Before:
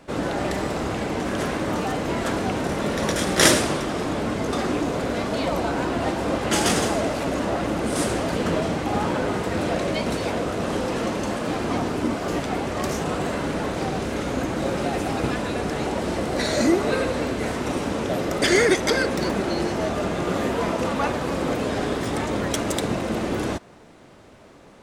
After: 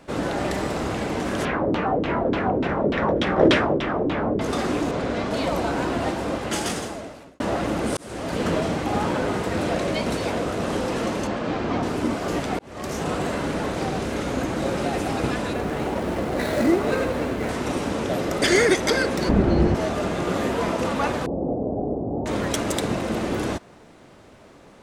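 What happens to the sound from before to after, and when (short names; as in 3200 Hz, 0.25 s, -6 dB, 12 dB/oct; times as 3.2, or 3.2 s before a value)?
1.45–4.41 LFO low-pass saw down 3.4 Hz 310–3500 Hz
4.91–5.31 air absorption 66 m
5.95–7.4 fade out linear
7.97–8.43 fade in linear
11.27–11.83 Gaussian blur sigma 1.5 samples
12.59–13.06 fade in
15.53–17.49 median filter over 9 samples
19.29–19.75 RIAA curve playback
21.26–22.26 elliptic low-pass 750 Hz, stop band 70 dB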